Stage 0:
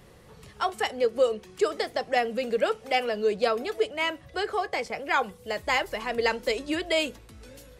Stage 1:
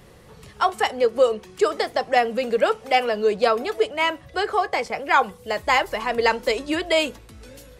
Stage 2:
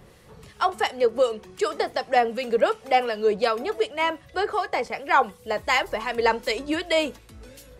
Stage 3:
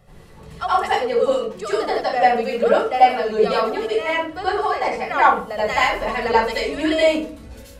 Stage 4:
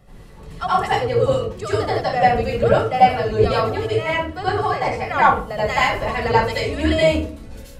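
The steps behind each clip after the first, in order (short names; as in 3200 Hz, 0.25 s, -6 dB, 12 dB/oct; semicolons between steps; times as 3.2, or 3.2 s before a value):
dynamic EQ 990 Hz, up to +5 dB, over -40 dBFS, Q 1.4; gain +4 dB
harmonic tremolo 2.7 Hz, depth 50%, crossover 1500 Hz
reverb RT60 0.45 s, pre-delay 74 ms, DRR -8 dB; gain -7 dB
octaver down 2 oct, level +2 dB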